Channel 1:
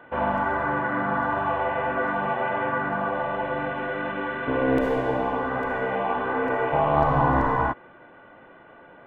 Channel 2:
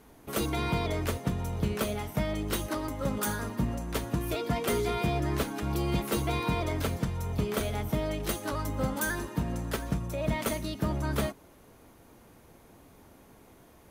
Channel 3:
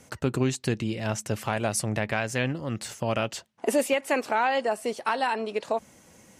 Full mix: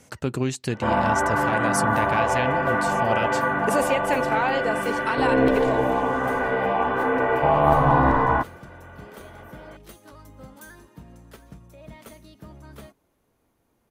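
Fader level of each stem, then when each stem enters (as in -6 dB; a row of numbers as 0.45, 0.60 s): +3.0, -14.0, 0.0 dB; 0.70, 1.60, 0.00 s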